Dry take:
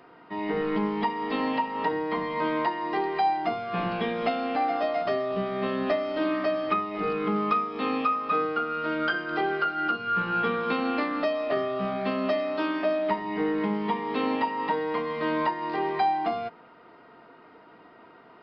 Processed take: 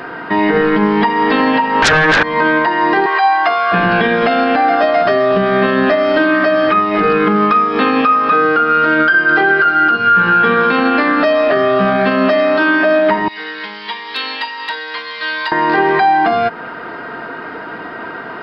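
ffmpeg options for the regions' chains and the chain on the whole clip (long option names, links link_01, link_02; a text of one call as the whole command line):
ffmpeg -i in.wav -filter_complex "[0:a]asettb=1/sr,asplit=3[link_01][link_02][link_03];[link_01]atrim=end=1.824[link_04];[link_02]atrim=start=1.82:end=2.23,asetpts=PTS-STARTPTS,afade=type=in:duration=0.004:curve=qsin,afade=type=out:start_time=0.406:duration=0.004:curve=qsin,highpass=180,highshelf=frequency=1700:width_type=q:width=1.5:gain=-6,aeval=exprs='0.188*sin(PI/2*6.31*val(0)/0.188)':channel_layout=same[link_05];[link_03]atrim=start=2.226[link_06];[link_04][link_05]acrossfade=duration=0.004:curve1=hsin:curve2=qsin[link_07];[link_07][link_06]acrossfade=duration=0.004:curve1=qsin:curve2=hsin,asettb=1/sr,asplit=3[link_08][link_09][link_10];[link_08]atrim=end=3.064[link_11];[link_09]atrim=start=3.06:end=3.72,asetpts=PTS-STARTPTS,afade=type=in:duration=0.004:curve=qsin,afade=type=out:start_time=0.656:duration=0.004:curve=qsin,highpass=710,aeval=exprs='val(0)+0.0158*sin(2*PI*1100*n/s)':channel_layout=same[link_12];[link_10]atrim=start=3.716[link_13];[link_11][link_12]acrossfade=duration=0.004:curve1=hsin:curve2=qsin[link_14];[link_14][link_13]acrossfade=duration=0.004:curve1=qsin:curve2=hsin,asettb=1/sr,asplit=3[link_15][link_16][link_17];[link_15]atrim=end=13.284[link_18];[link_16]atrim=start=13.28:end=15.52,asetpts=PTS-STARTPTS,afade=type=in:duration=0.004:curve=qsin,afade=type=out:start_time=2.236:duration=0.004:curve=qsin,bandpass=frequency=4300:width_type=q:width=2.6,asoftclip=type=hard:threshold=-34.5dB[link_19];[link_17]atrim=start=15.516[link_20];[link_18][link_19]acrossfade=duration=0.004:curve1=hsin:curve2=qsin[link_21];[link_21][link_20]acrossfade=duration=0.004:curve1=qsin:curve2=hsin,equalizer=frequency=1600:width_type=o:width=0.25:gain=12.5,acompressor=threshold=-37dB:ratio=2,alimiter=level_in=26dB:limit=-1dB:release=50:level=0:latency=1,volume=-3dB" out.wav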